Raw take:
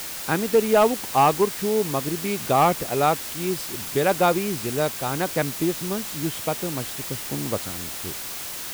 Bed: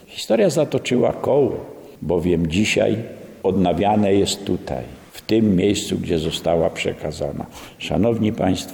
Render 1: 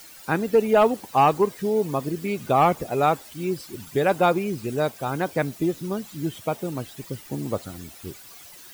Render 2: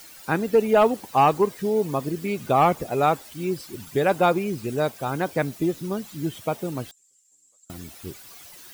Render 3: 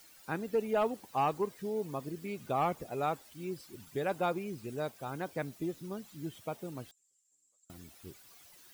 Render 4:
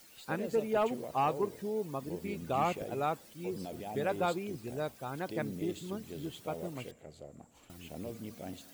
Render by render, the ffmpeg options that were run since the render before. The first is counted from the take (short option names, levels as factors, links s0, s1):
-af "afftdn=nr=15:nf=-33"
-filter_complex "[0:a]asettb=1/sr,asplit=3[s0][s1][s2];[s0]atrim=end=6.914[s3];[s1]atrim=start=6.91:end=7.7,asetpts=PTS-STARTPTS,afade=t=in:d=0.004:c=qsin,afade=t=out:st=0.786:d=0.004:c=qsin,bandpass=f=7400:t=q:w=17[s4];[s2]atrim=start=7.696[s5];[s3][s4]acrossfade=d=0.004:c1=hsin:c2=qsin[s6];[s6][s5]acrossfade=d=0.004:c1=qsin:c2=hsin"
-af "volume=0.237"
-filter_complex "[1:a]volume=0.0562[s0];[0:a][s0]amix=inputs=2:normalize=0"